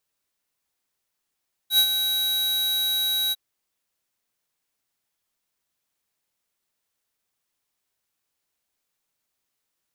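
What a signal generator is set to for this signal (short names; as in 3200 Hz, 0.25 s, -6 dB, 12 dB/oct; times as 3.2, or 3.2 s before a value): ADSR square 3870 Hz, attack 86 ms, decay 72 ms, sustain -8 dB, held 1.62 s, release 31 ms -16 dBFS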